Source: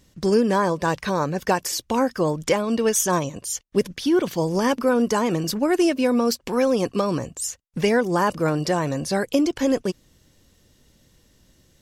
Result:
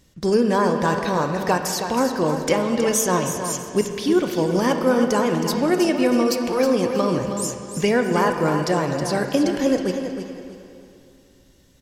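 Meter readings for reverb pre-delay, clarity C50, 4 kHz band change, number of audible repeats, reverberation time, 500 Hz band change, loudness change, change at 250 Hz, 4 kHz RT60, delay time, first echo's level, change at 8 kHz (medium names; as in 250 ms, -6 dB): 15 ms, 4.0 dB, +1.0 dB, 3, 2.6 s, +1.5 dB, +1.5 dB, +1.5 dB, 2.4 s, 319 ms, -8.5 dB, +0.5 dB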